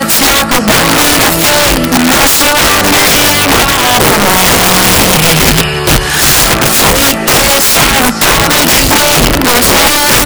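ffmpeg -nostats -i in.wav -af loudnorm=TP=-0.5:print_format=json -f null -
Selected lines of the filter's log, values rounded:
"input_i" : "-5.6",
"input_tp" : "3.6",
"input_lra" : "0.5",
"input_thresh" : "-15.6",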